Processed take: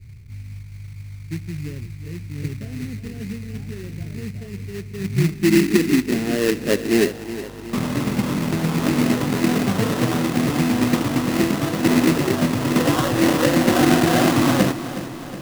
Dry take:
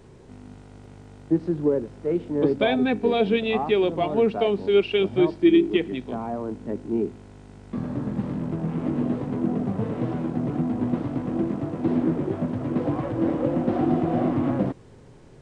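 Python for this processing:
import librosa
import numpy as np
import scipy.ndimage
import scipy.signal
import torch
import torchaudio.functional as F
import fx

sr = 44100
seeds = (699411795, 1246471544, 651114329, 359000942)

p1 = fx.filter_sweep_lowpass(x, sr, from_hz=100.0, to_hz=1300.0, start_s=4.7, end_s=7.73, q=3.1)
p2 = fx.sample_hold(p1, sr, seeds[0], rate_hz=2300.0, jitter_pct=20)
p3 = p2 + fx.echo_feedback(p2, sr, ms=366, feedback_pct=58, wet_db=-13.5, dry=0)
y = F.gain(torch.from_numpy(p3), 5.5).numpy()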